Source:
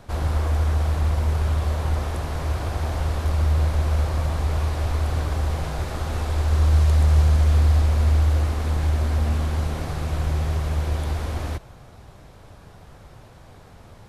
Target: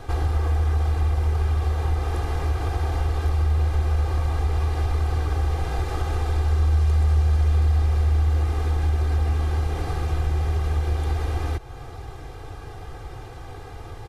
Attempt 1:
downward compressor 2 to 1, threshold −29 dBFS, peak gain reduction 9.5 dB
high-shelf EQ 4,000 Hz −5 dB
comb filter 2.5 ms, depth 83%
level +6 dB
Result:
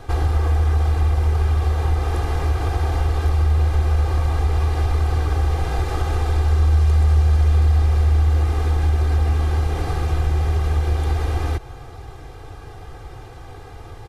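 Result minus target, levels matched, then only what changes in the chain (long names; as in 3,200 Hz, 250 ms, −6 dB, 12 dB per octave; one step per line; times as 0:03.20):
downward compressor: peak gain reduction −3.5 dB
change: downward compressor 2 to 1, threshold −36.5 dBFS, peak gain reduction 13 dB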